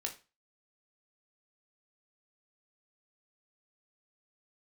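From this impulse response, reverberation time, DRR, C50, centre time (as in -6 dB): 0.30 s, 2.5 dB, 12.5 dB, 12 ms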